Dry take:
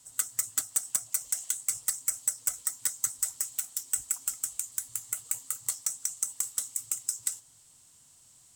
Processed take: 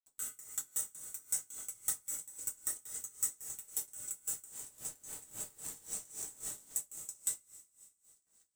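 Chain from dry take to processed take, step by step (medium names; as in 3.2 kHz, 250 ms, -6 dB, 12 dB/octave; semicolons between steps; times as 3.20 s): 4.46–6.72 s: spectrogram pixelated in time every 200 ms; gate with hold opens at -45 dBFS; treble shelf 3.2 kHz +8 dB; band-stop 4.8 kHz, Q 5.7; repeats whose band climbs or falls 499 ms, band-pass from 400 Hz, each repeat 1.4 oct, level -2 dB; crossover distortion -35.5 dBFS; de-hum 114.4 Hz, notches 38; compression 2:1, threshold -31 dBFS, peak gain reduction 9 dB; tilt shelf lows +7 dB, about 690 Hz; two-slope reverb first 0.27 s, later 3.1 s, from -21 dB, DRR -3.5 dB; logarithmic tremolo 3.7 Hz, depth 20 dB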